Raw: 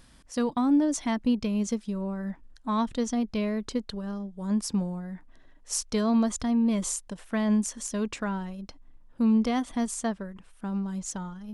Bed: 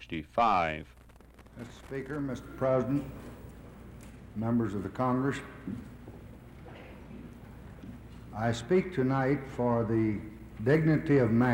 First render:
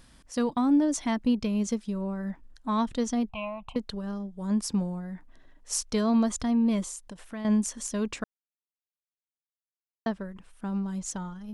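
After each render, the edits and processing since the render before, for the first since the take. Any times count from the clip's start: 3.29–3.76 EQ curve 150 Hz 0 dB, 230 Hz -16 dB, 420 Hz -28 dB, 730 Hz +11 dB, 1100 Hz +7 dB, 1800 Hz -27 dB, 2600 Hz +9 dB, 4900 Hz -29 dB, 9100 Hz -16 dB; 6.82–7.45 compressor 2:1, threshold -41 dBFS; 8.24–10.06 mute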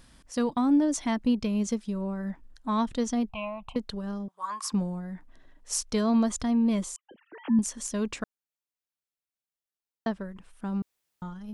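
4.28–4.72 resonant high-pass 1100 Hz, resonance Q 11; 6.96–7.59 sine-wave speech; 10.82–11.22 room tone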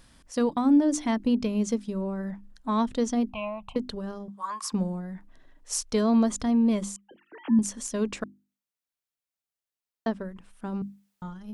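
notches 50/100/150/200/250/300/350 Hz; dynamic EQ 390 Hz, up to +4 dB, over -41 dBFS, Q 0.89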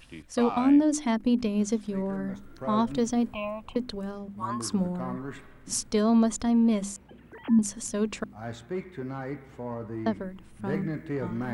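add bed -7.5 dB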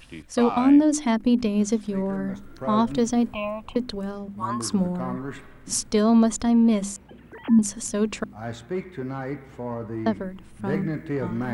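gain +4 dB

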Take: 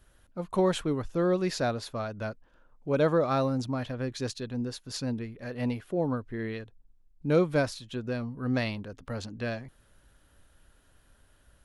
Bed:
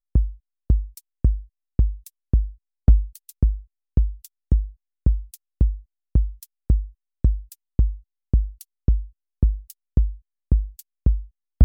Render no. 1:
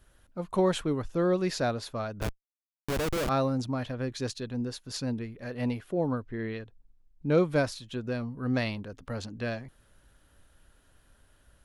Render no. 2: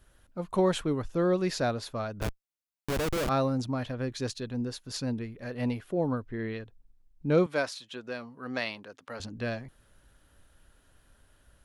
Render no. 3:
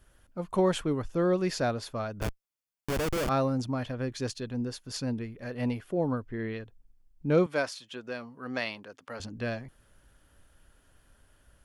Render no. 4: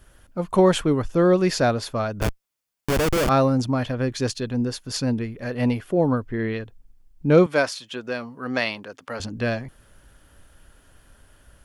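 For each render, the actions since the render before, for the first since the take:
2.21–3.29 Schmitt trigger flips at -28 dBFS; 6.23–7.38 air absorption 58 m
7.46–9.2 weighting filter A
notch 3900 Hz, Q 12
gain +8.5 dB

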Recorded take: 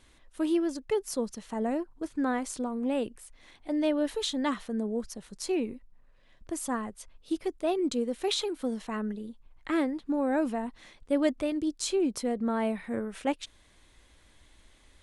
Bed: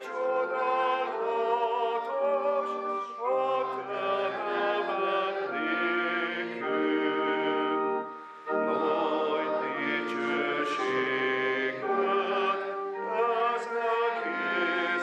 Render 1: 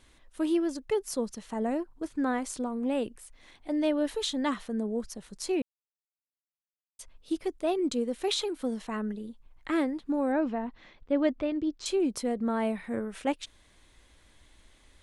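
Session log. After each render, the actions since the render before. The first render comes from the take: 5.62–6.99 mute; 10.32–11.86 Gaussian blur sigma 1.9 samples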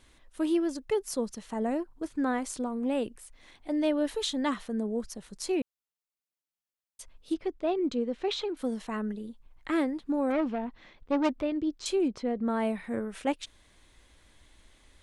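7.34–8.57 air absorption 150 m; 10.3–11.43 self-modulated delay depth 0.31 ms; 12.08–12.48 air absorption 180 m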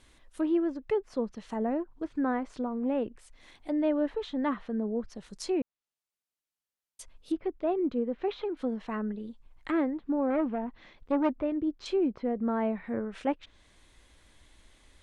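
treble ducked by the level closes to 1800 Hz, closed at -28.5 dBFS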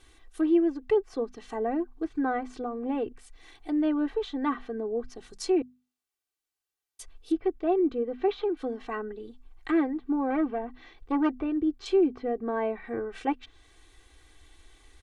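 notches 50/100/150/200/250 Hz; comb 2.6 ms, depth 84%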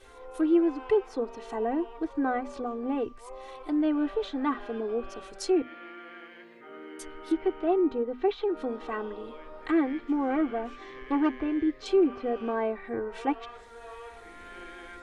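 add bed -17 dB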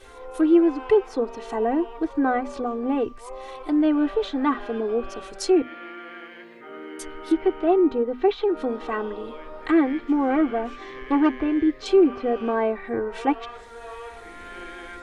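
gain +6 dB

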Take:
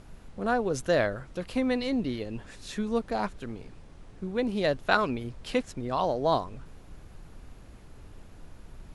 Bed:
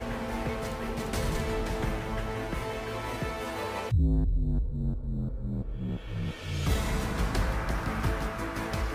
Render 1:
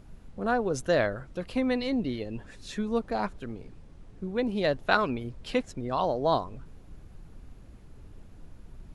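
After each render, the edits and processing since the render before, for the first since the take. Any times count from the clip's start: denoiser 6 dB, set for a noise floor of -50 dBFS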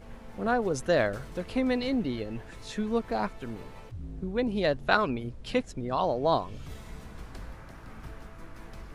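add bed -16 dB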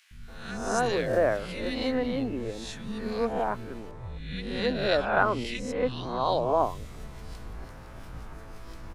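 spectral swells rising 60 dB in 0.69 s; three bands offset in time highs, lows, mids 0.11/0.28 s, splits 220/1900 Hz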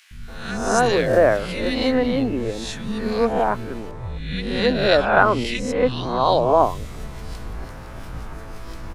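gain +8.5 dB; limiter -1 dBFS, peak gain reduction 1 dB

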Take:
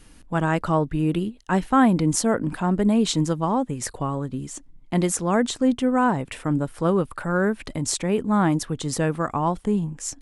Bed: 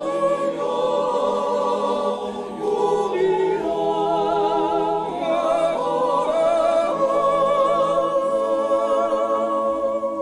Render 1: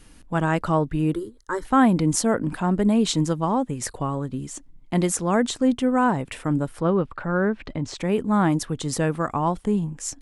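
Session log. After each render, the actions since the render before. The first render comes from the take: 1.13–1.65 fixed phaser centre 720 Hz, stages 6; 6.8–7.98 air absorption 180 m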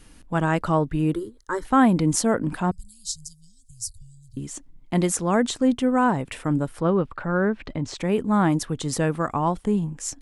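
2.71–4.37 Chebyshev band-stop 100–4800 Hz, order 4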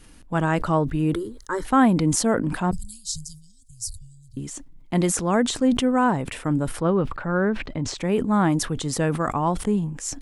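sustainer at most 85 dB/s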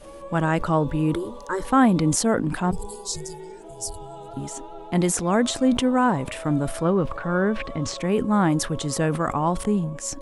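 add bed -19.5 dB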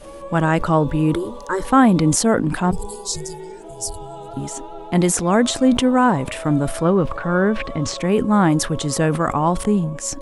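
gain +4.5 dB; limiter -3 dBFS, peak gain reduction 1.5 dB

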